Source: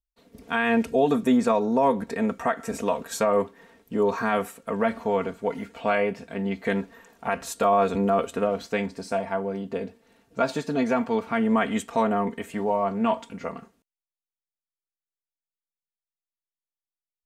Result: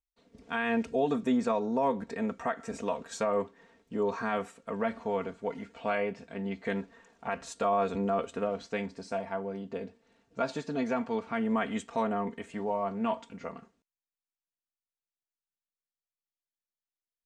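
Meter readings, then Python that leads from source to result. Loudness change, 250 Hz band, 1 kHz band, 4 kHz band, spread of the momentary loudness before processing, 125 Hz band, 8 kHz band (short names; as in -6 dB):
-7.0 dB, -7.0 dB, -7.0 dB, -7.0 dB, 10 LU, -7.0 dB, -9.0 dB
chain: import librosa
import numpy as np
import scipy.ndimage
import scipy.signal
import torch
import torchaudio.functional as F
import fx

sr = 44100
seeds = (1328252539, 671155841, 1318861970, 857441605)

y = scipy.signal.sosfilt(scipy.signal.butter(4, 8000.0, 'lowpass', fs=sr, output='sos'), x)
y = F.gain(torch.from_numpy(y), -7.0).numpy()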